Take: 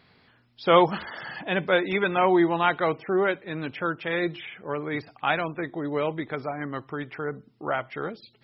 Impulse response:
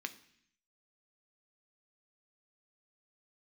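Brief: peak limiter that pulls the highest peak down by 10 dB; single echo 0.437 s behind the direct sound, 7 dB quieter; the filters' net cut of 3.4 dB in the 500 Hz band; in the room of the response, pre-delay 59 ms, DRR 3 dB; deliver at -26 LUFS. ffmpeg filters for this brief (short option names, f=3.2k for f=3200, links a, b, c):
-filter_complex "[0:a]equalizer=f=500:t=o:g=-4.5,alimiter=limit=-17dB:level=0:latency=1,aecho=1:1:437:0.447,asplit=2[a][b];[1:a]atrim=start_sample=2205,adelay=59[c];[b][c]afir=irnorm=-1:irlink=0,volume=-3dB[d];[a][d]amix=inputs=2:normalize=0,volume=2.5dB"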